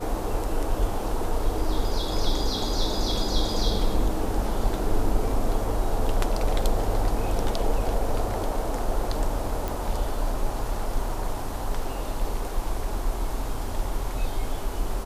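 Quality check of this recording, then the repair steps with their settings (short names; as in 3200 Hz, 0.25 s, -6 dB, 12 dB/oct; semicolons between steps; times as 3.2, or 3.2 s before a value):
9.68 pop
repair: de-click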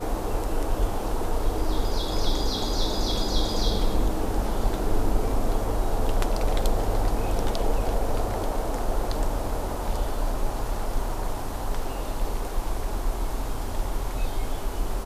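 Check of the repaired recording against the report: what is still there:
none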